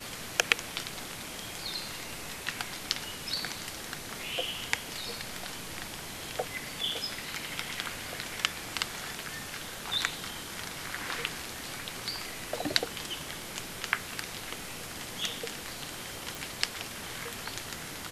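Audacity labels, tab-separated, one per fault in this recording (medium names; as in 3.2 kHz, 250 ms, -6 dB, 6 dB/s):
16.350000	16.350000	pop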